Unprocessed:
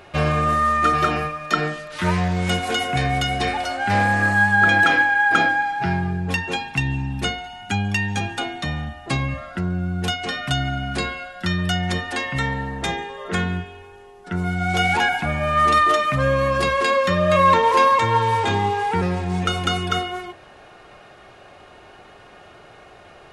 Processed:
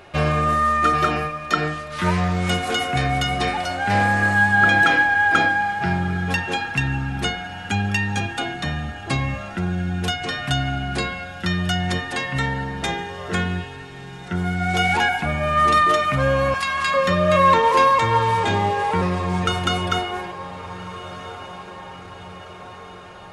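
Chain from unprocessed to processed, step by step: 16.54–16.94 HPF 1000 Hz 24 dB/oct; diffused feedback echo 1.465 s, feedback 57%, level -15.5 dB

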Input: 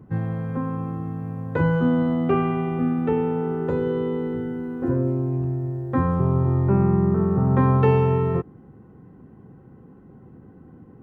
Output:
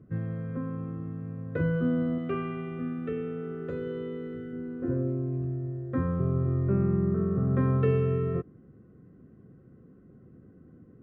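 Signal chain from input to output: LPF 2600 Hz 6 dB/oct; 2.18–4.53 tilt shelf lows -4.5 dB, about 1400 Hz; Butterworth band-stop 880 Hz, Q 2.1; gain -6.5 dB

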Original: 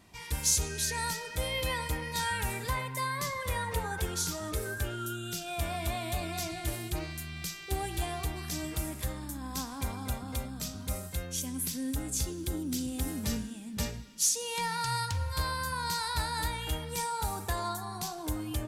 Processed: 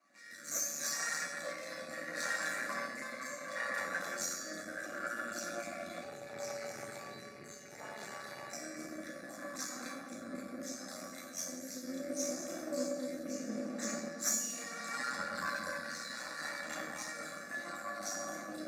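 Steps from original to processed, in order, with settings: random spectral dropouts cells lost 39%; reverb RT60 3.5 s, pre-delay 5 ms, DRR -5.5 dB; dynamic EQ 7000 Hz, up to +7 dB, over -43 dBFS, Q 2.6; half-wave rectifier; weighting filter A; rotary speaker horn 0.7 Hz; fixed phaser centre 620 Hz, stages 8; 6.03–8.53 ring modulator 100 Hz; HPF 100 Hz 24 dB/oct; resonator 570 Hz, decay 0.58 s, mix 90%; gain +10 dB

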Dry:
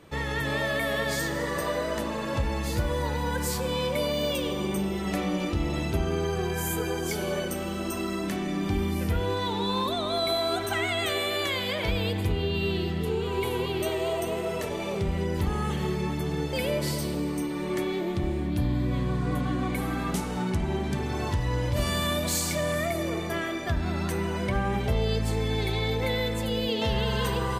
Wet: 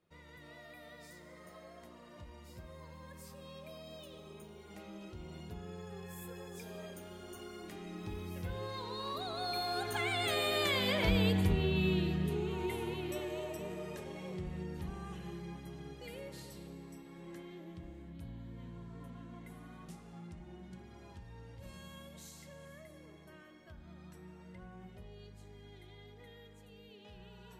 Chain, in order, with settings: Doppler pass-by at 11.02, 25 m/s, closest 20 m; on a send: reverb RT60 0.15 s, pre-delay 3 ms, DRR 21.5 dB; on the sum: gain -3 dB

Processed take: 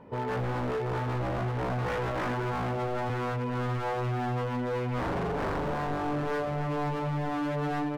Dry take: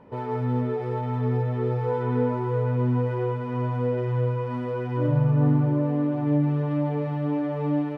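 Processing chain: 1.38–3.1 HPF 51 Hz 24 dB/oct; wavefolder -25.5 dBFS

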